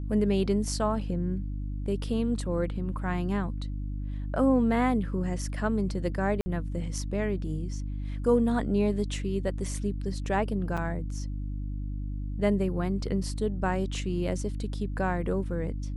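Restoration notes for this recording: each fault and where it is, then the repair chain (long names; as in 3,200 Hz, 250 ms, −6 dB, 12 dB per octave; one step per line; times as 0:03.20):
mains hum 50 Hz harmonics 6 −33 dBFS
0:06.41–0:06.46: drop-out 50 ms
0:10.77–0:10.78: drop-out 5.9 ms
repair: hum removal 50 Hz, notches 6
repair the gap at 0:06.41, 50 ms
repair the gap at 0:10.77, 5.9 ms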